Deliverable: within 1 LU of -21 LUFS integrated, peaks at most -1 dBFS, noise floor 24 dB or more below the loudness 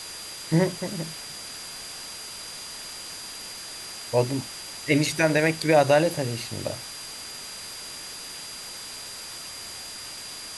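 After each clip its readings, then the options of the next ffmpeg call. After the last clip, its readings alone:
steady tone 4.8 kHz; tone level -40 dBFS; noise floor -39 dBFS; noise floor target -52 dBFS; loudness -28.0 LUFS; peak level -7.0 dBFS; loudness target -21.0 LUFS
-> -af "bandreject=f=4800:w=30"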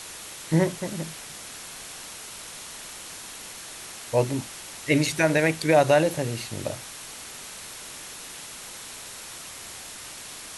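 steady tone not found; noise floor -41 dBFS; noise floor target -53 dBFS
-> -af "afftdn=nr=12:nf=-41"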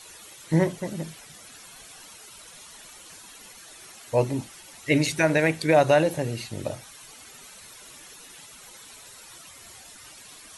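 noise floor -47 dBFS; noise floor target -49 dBFS
-> -af "afftdn=nr=6:nf=-47"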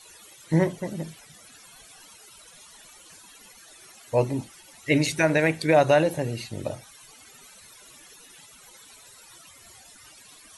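noise floor -51 dBFS; loudness -24.0 LUFS; peak level -7.0 dBFS; loudness target -21.0 LUFS
-> -af "volume=1.41"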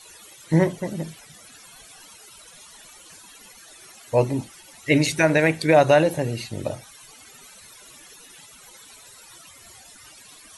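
loudness -21.0 LUFS; peak level -4.0 dBFS; noise floor -48 dBFS

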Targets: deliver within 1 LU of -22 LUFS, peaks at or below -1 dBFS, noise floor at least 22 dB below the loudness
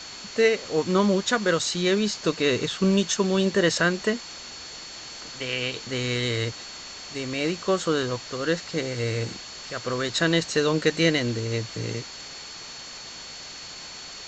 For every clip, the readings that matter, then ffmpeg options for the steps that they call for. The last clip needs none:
steady tone 4.4 kHz; tone level -41 dBFS; noise floor -40 dBFS; noise floor target -47 dBFS; loudness -25.0 LUFS; peak level -6.0 dBFS; loudness target -22.0 LUFS
-> -af "bandreject=f=4400:w=30"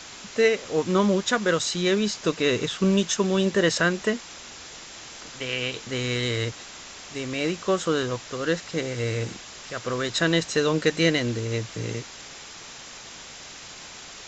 steady tone not found; noise floor -42 dBFS; noise floor target -47 dBFS
-> -af "afftdn=nr=6:nf=-42"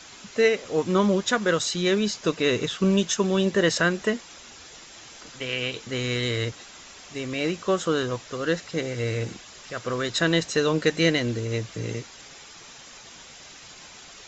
noise floor -46 dBFS; noise floor target -47 dBFS
-> -af "afftdn=nr=6:nf=-46"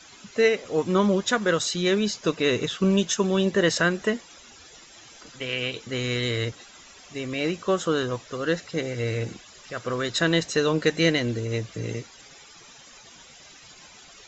noise floor -49 dBFS; loudness -25.0 LUFS; peak level -6.5 dBFS; loudness target -22.0 LUFS
-> -af "volume=1.41"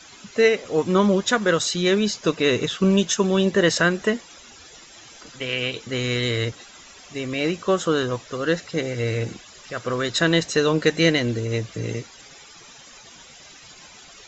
loudness -22.0 LUFS; peak level -3.5 dBFS; noise floor -46 dBFS

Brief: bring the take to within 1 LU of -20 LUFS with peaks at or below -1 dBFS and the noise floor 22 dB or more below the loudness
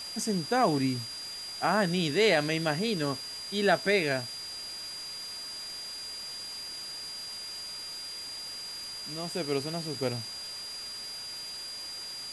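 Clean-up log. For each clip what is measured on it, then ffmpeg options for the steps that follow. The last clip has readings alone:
steady tone 4.8 kHz; tone level -38 dBFS; noise floor -40 dBFS; noise floor target -54 dBFS; loudness -31.5 LUFS; peak level -12.0 dBFS; loudness target -20.0 LUFS
-> -af "bandreject=f=4800:w=30"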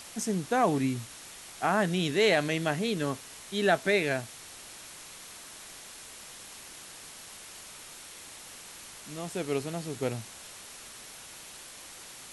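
steady tone not found; noise floor -47 dBFS; noise floor target -51 dBFS
-> -af "afftdn=nr=6:nf=-47"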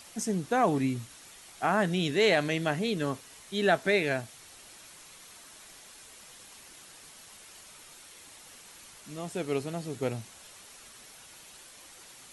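noise floor -52 dBFS; loudness -29.0 LUFS; peak level -12.5 dBFS; loudness target -20.0 LUFS
-> -af "volume=2.82"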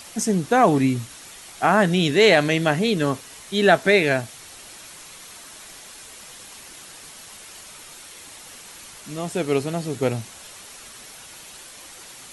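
loudness -20.0 LUFS; peak level -3.5 dBFS; noise floor -43 dBFS

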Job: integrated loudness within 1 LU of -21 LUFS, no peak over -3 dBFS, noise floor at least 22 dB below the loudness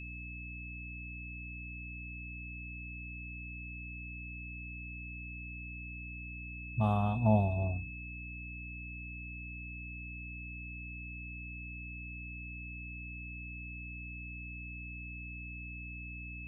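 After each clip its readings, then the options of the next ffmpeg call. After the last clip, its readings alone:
hum 60 Hz; highest harmonic 300 Hz; hum level -43 dBFS; steady tone 2.6 kHz; tone level -45 dBFS; loudness -39.5 LUFS; peak level -15.0 dBFS; loudness target -21.0 LUFS
-> -af "bandreject=f=60:t=h:w=6,bandreject=f=120:t=h:w=6,bandreject=f=180:t=h:w=6,bandreject=f=240:t=h:w=6,bandreject=f=300:t=h:w=6"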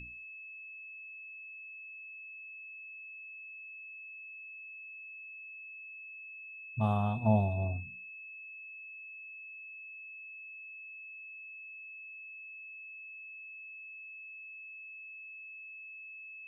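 hum not found; steady tone 2.6 kHz; tone level -45 dBFS
-> -af "bandreject=f=2600:w=30"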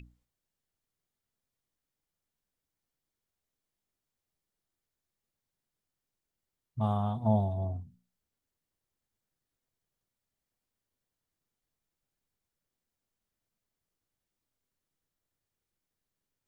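steady tone not found; loudness -31.0 LUFS; peak level -14.5 dBFS; loudness target -21.0 LUFS
-> -af "volume=3.16"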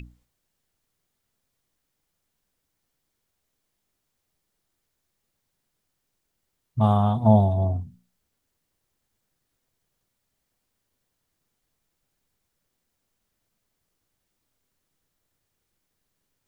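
loudness -21.0 LUFS; peak level -4.5 dBFS; noise floor -79 dBFS

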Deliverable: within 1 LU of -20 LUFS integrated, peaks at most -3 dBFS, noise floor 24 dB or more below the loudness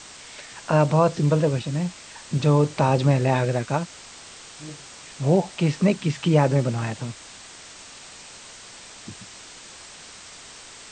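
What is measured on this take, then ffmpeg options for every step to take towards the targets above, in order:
noise floor -44 dBFS; noise floor target -46 dBFS; loudness -22.0 LUFS; peak level -5.5 dBFS; loudness target -20.0 LUFS
-> -af "afftdn=nr=6:nf=-44"
-af "volume=1.26"

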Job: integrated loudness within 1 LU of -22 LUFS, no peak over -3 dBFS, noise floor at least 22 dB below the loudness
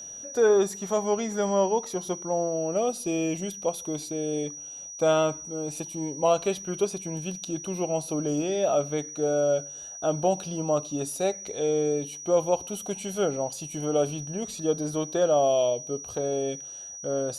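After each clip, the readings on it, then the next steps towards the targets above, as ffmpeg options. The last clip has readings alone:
steady tone 5.8 kHz; tone level -38 dBFS; loudness -27.5 LUFS; peak level -10.0 dBFS; loudness target -22.0 LUFS
-> -af "bandreject=f=5800:w=30"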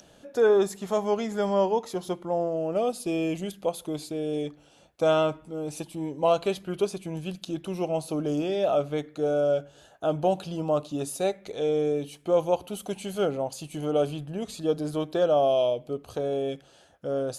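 steady tone not found; loudness -27.5 LUFS; peak level -10.5 dBFS; loudness target -22.0 LUFS
-> -af "volume=1.88"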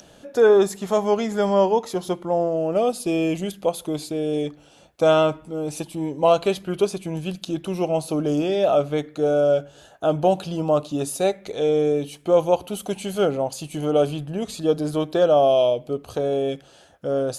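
loudness -22.0 LUFS; peak level -5.0 dBFS; noise floor -51 dBFS

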